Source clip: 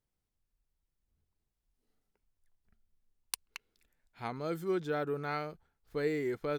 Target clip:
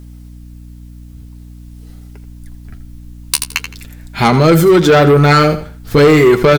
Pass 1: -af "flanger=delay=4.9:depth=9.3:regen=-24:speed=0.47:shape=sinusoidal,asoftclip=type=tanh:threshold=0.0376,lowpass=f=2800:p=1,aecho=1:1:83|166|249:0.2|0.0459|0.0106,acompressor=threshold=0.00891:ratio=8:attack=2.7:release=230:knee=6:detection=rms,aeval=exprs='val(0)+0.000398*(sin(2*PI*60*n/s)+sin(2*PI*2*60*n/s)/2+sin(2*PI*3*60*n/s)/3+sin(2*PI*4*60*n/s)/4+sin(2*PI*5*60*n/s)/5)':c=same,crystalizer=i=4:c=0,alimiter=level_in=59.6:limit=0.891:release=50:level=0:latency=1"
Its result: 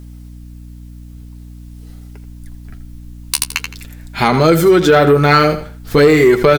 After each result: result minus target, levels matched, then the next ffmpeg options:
saturation: distortion -8 dB; 125 Hz band -3.0 dB
-af "flanger=delay=4.9:depth=9.3:regen=-24:speed=0.47:shape=sinusoidal,asoftclip=type=tanh:threshold=0.0168,lowpass=f=2800:p=1,aecho=1:1:83|166|249:0.2|0.0459|0.0106,acompressor=threshold=0.00891:ratio=8:attack=2.7:release=230:knee=6:detection=rms,aeval=exprs='val(0)+0.000398*(sin(2*PI*60*n/s)+sin(2*PI*2*60*n/s)/2+sin(2*PI*3*60*n/s)/3+sin(2*PI*4*60*n/s)/4+sin(2*PI*5*60*n/s)/5)':c=same,crystalizer=i=4:c=0,alimiter=level_in=59.6:limit=0.891:release=50:level=0:latency=1"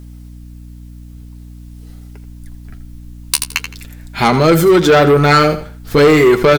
125 Hz band -3.0 dB
-af "flanger=delay=4.9:depth=9.3:regen=-24:speed=0.47:shape=sinusoidal,asoftclip=type=tanh:threshold=0.0168,lowpass=f=2800:p=1,aecho=1:1:83|166|249:0.2|0.0459|0.0106,acompressor=threshold=0.00891:ratio=8:attack=2.7:release=230:knee=6:detection=rms,equalizer=f=92:w=0.6:g=5.5,aeval=exprs='val(0)+0.000398*(sin(2*PI*60*n/s)+sin(2*PI*2*60*n/s)/2+sin(2*PI*3*60*n/s)/3+sin(2*PI*4*60*n/s)/4+sin(2*PI*5*60*n/s)/5)':c=same,crystalizer=i=4:c=0,alimiter=level_in=59.6:limit=0.891:release=50:level=0:latency=1"

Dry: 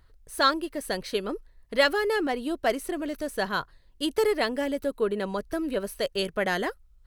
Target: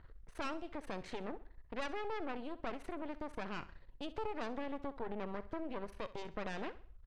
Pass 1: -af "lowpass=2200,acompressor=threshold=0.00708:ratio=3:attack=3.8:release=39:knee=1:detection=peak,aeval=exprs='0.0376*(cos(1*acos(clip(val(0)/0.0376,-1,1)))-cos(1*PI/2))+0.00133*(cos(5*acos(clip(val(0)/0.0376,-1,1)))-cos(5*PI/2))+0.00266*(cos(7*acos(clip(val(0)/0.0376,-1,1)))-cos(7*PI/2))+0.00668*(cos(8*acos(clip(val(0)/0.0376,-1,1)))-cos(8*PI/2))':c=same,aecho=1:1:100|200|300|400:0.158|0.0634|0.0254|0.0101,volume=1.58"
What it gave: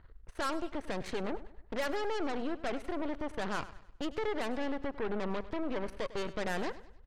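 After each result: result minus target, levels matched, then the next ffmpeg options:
echo 35 ms late; compression: peak gain reduction -6.5 dB
-af "lowpass=2200,acompressor=threshold=0.00708:ratio=3:attack=3.8:release=39:knee=1:detection=peak,aeval=exprs='0.0376*(cos(1*acos(clip(val(0)/0.0376,-1,1)))-cos(1*PI/2))+0.00133*(cos(5*acos(clip(val(0)/0.0376,-1,1)))-cos(5*PI/2))+0.00266*(cos(7*acos(clip(val(0)/0.0376,-1,1)))-cos(7*PI/2))+0.00668*(cos(8*acos(clip(val(0)/0.0376,-1,1)))-cos(8*PI/2))':c=same,aecho=1:1:65|130|195|260:0.158|0.0634|0.0254|0.0101,volume=1.58"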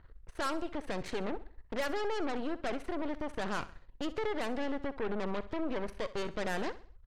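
compression: peak gain reduction -6.5 dB
-af "lowpass=2200,acompressor=threshold=0.00224:ratio=3:attack=3.8:release=39:knee=1:detection=peak,aeval=exprs='0.0376*(cos(1*acos(clip(val(0)/0.0376,-1,1)))-cos(1*PI/2))+0.00133*(cos(5*acos(clip(val(0)/0.0376,-1,1)))-cos(5*PI/2))+0.00266*(cos(7*acos(clip(val(0)/0.0376,-1,1)))-cos(7*PI/2))+0.00668*(cos(8*acos(clip(val(0)/0.0376,-1,1)))-cos(8*PI/2))':c=same,aecho=1:1:65|130|195|260:0.158|0.0634|0.0254|0.0101,volume=1.58"

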